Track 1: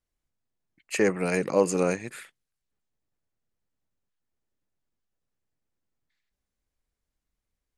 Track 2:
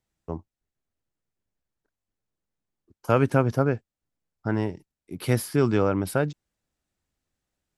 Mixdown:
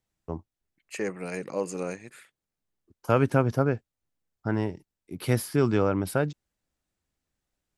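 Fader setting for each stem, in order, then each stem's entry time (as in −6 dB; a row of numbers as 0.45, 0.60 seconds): −8.0, −1.5 decibels; 0.00, 0.00 seconds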